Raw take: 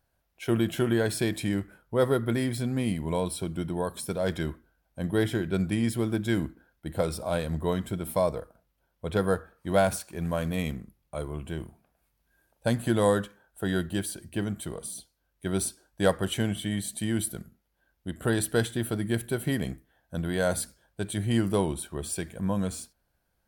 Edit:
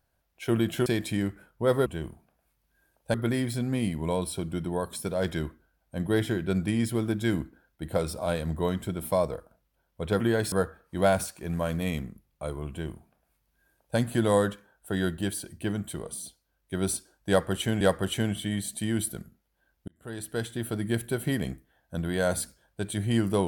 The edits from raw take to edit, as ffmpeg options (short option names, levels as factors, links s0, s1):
-filter_complex "[0:a]asplit=8[s0][s1][s2][s3][s4][s5][s6][s7];[s0]atrim=end=0.862[s8];[s1]atrim=start=1.178:end=2.182[s9];[s2]atrim=start=11.418:end=12.702[s10];[s3]atrim=start=2.178:end=9.242[s11];[s4]atrim=start=0.858:end=1.182[s12];[s5]atrim=start=9.238:end=16.532[s13];[s6]atrim=start=16.008:end=18.08,asetpts=PTS-STARTPTS,afade=t=out:st=2.068:d=0.004:c=hsin[s14];[s7]atrim=start=18.08,asetpts=PTS-STARTPTS,afade=t=in:d=1.01[s15];[s8][s9]acrossfade=d=0.004:c1=hsin:c2=hsin[s16];[s16][s10]acrossfade=d=0.004:c1=hsin:c2=hsin[s17];[s17][s11]acrossfade=d=0.004:c1=hsin:c2=hsin[s18];[s18][s12]acrossfade=d=0.004:c1=hsin:c2=hsin[s19];[s19][s13]acrossfade=d=0.004:c1=hsin:c2=hsin[s20];[s14][s15]concat=n=2:v=0:a=1[s21];[s20][s21]acrossfade=d=0.004:c1=hsin:c2=hsin"